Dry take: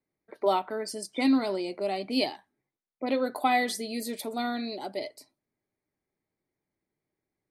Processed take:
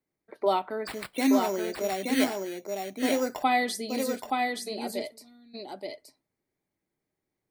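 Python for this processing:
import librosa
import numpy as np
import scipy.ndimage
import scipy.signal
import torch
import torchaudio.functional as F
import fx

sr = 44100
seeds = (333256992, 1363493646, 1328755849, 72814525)

p1 = fx.sample_hold(x, sr, seeds[0], rate_hz=6300.0, jitter_pct=0, at=(0.87, 3.43))
p2 = fx.tone_stack(p1, sr, knobs='10-0-1', at=(4.18, 4.66), fade=0.02)
y = p2 + fx.echo_single(p2, sr, ms=874, db=-3.5, dry=0)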